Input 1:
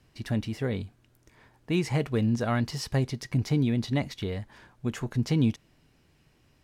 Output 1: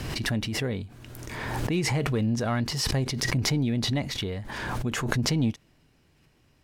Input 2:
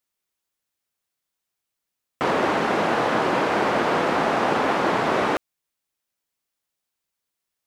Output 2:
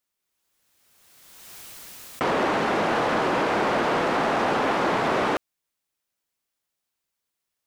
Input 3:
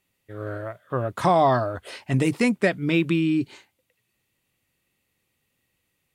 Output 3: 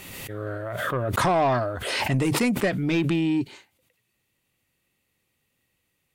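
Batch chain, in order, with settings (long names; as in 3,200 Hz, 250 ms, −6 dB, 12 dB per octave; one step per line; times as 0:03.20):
soft clipping −16 dBFS
background raised ahead of every attack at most 29 dB per second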